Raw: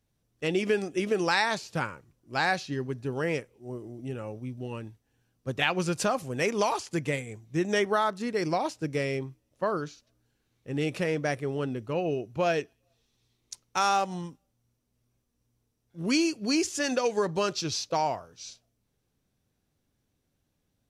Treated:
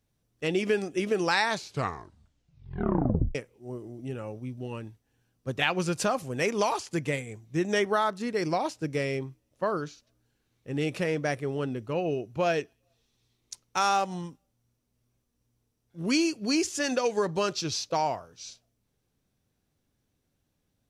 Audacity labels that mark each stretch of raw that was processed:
1.530000	1.530000	tape stop 1.82 s

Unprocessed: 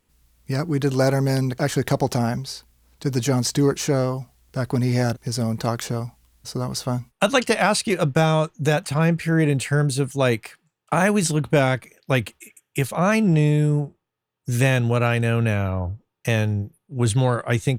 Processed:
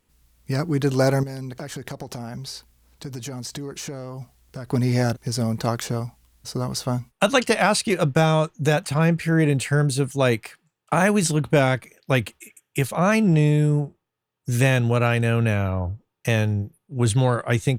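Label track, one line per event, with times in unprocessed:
1.230000	4.710000	compressor 10:1, threshold -29 dBFS

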